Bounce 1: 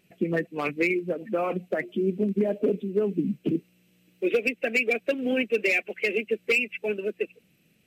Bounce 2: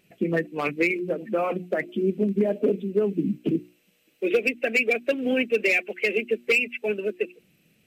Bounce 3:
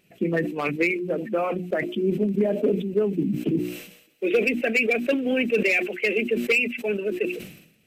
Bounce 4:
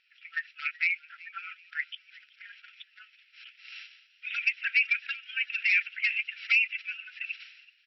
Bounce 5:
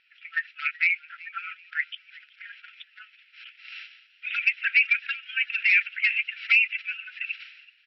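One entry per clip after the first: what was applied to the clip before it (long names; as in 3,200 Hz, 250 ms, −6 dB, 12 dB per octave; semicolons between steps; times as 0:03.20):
mains-hum notches 60/120/180/240/300/360 Hz; level +2 dB
level that may fall only so fast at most 77 dB per second
brick-wall band-pass 1,300–5,700 Hz; echo with shifted repeats 378 ms, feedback 34%, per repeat +90 Hz, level −22 dB; level −1.5 dB
high-frequency loss of the air 200 metres; level +7 dB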